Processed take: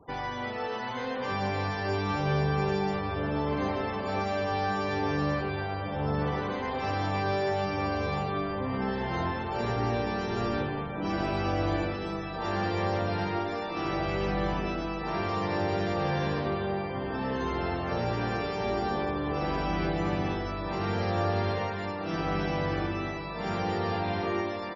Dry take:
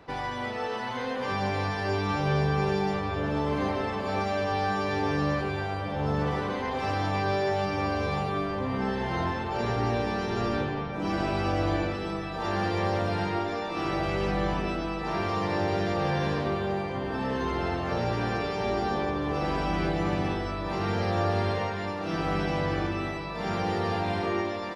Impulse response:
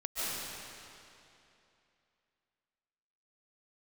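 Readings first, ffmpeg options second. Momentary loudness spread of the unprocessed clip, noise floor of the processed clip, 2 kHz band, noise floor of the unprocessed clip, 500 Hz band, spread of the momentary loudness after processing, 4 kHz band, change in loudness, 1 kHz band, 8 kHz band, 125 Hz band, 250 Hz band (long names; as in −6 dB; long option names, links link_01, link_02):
4 LU, −35 dBFS, −1.5 dB, −33 dBFS, −1.5 dB, 5 LU, −2.0 dB, −1.5 dB, −1.5 dB, can't be measured, −1.5 dB, −1.5 dB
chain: -filter_complex "[1:a]atrim=start_sample=2205,atrim=end_sample=3528,asetrate=26901,aresample=44100[link_01];[0:a][link_01]afir=irnorm=-1:irlink=0,afftfilt=real='re*gte(hypot(re,im),0.00447)':imag='im*gte(hypot(re,im),0.00447)':win_size=1024:overlap=0.75"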